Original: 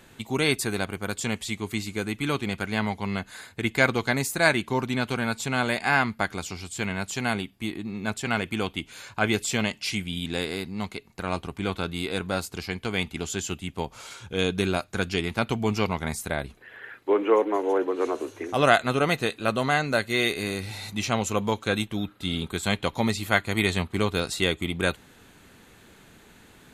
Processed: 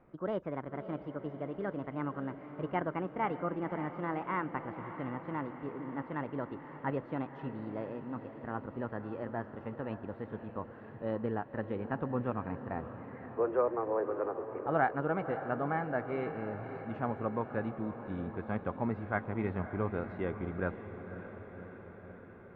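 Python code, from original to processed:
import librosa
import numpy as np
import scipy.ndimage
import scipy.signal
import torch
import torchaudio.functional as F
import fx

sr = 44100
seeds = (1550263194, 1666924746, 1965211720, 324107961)

y = fx.speed_glide(x, sr, from_pct=141, to_pct=96)
y = scipy.signal.sosfilt(scipy.signal.butter(4, 1500.0, 'lowpass', fs=sr, output='sos'), y)
y = fx.echo_diffused(y, sr, ms=563, feedback_pct=68, wet_db=-11)
y = y * 10.0 ** (-8.5 / 20.0)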